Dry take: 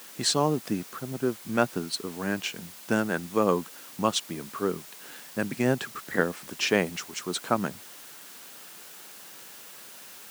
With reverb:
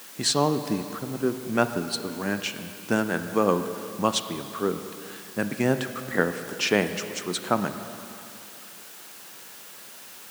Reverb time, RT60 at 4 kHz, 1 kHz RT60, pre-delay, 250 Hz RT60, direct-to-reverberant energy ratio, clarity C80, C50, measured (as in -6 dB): 2.6 s, 2.4 s, 2.6 s, 22 ms, 2.5 s, 9.0 dB, 10.5 dB, 9.5 dB